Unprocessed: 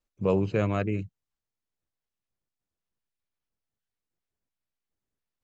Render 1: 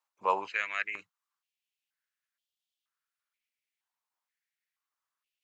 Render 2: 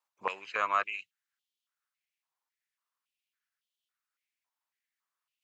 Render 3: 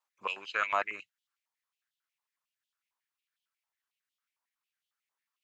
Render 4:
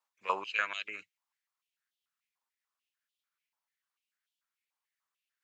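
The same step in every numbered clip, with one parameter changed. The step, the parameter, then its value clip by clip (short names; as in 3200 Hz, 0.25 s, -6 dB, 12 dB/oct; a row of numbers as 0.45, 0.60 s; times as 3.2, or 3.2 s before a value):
stepped high-pass, rate: 2.1, 3.6, 11, 6.8 Hz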